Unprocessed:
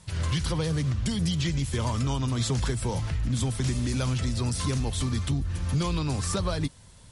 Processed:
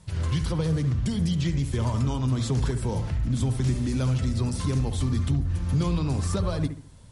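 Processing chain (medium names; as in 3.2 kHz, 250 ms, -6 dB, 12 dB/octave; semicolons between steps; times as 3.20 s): tilt shelf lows +3.5 dB, about 840 Hz; bucket-brigade echo 69 ms, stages 1024, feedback 35%, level -9 dB; trim -1.5 dB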